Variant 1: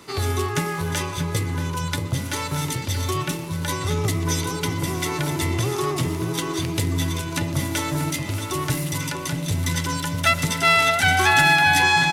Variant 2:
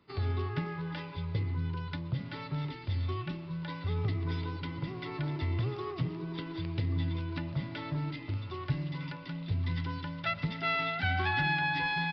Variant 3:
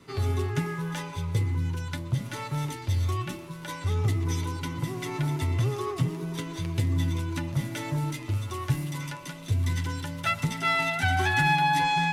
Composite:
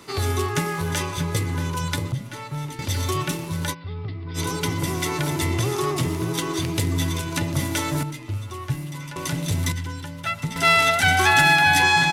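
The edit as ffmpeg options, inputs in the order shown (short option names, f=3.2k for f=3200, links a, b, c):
-filter_complex "[2:a]asplit=3[a][b][c];[0:a]asplit=5[d][e][f][g][h];[d]atrim=end=2.122[i];[a]atrim=start=2.118:end=2.792[j];[e]atrim=start=2.788:end=3.75[k];[1:a]atrim=start=3.69:end=4.4[l];[f]atrim=start=4.34:end=8.032[m];[b]atrim=start=8.028:end=9.162[n];[g]atrim=start=9.158:end=9.722[o];[c]atrim=start=9.718:end=10.562[p];[h]atrim=start=10.558[q];[i][j]acrossfade=d=0.004:c1=hsin:c2=hsin[r];[r][k]acrossfade=d=0.004:c1=hsin:c2=hsin[s];[s][l]acrossfade=d=0.06:c1=tri:c2=tri[t];[t][m]acrossfade=d=0.06:c1=tri:c2=tri[u];[u][n]acrossfade=d=0.004:c1=hsin:c2=hsin[v];[v][o]acrossfade=d=0.004:c1=hsin:c2=hsin[w];[w][p]acrossfade=d=0.004:c1=hsin:c2=hsin[x];[x][q]acrossfade=d=0.004:c1=hsin:c2=hsin"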